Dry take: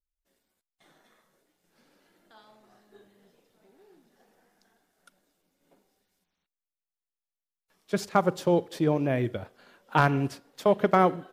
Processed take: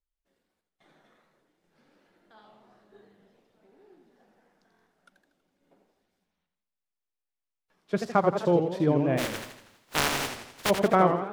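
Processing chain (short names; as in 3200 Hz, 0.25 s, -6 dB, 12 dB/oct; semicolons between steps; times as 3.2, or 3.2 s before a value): 9.17–10.69 spectral contrast lowered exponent 0.13; LPF 2600 Hz 6 dB/oct; stuck buffer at 4.7, samples 1024, times 6; warbling echo 82 ms, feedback 51%, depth 203 cents, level -7 dB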